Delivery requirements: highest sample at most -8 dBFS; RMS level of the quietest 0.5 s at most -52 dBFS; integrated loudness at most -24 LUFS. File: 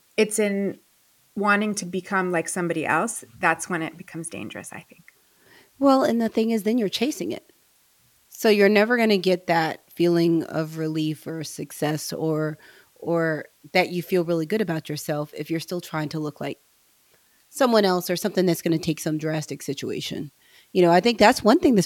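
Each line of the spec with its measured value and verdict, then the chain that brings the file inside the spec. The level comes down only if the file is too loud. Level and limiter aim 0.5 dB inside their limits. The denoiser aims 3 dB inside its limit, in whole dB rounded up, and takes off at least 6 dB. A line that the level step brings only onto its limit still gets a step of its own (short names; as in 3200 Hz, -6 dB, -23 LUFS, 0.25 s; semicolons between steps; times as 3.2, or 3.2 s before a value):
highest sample -3.5 dBFS: fail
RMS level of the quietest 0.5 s -61 dBFS: OK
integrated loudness -23.0 LUFS: fail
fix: gain -1.5 dB; limiter -8.5 dBFS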